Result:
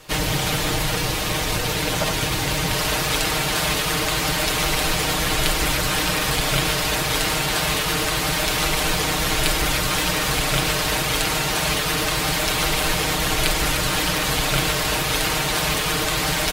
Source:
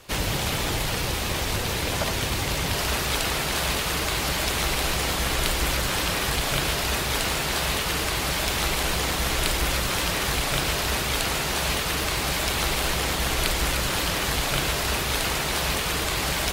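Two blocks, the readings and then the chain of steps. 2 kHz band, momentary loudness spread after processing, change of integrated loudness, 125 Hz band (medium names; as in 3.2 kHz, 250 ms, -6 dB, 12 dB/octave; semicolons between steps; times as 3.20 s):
+4.0 dB, 2 LU, +4.0 dB, +3.0 dB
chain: comb 6.5 ms; trim +2.5 dB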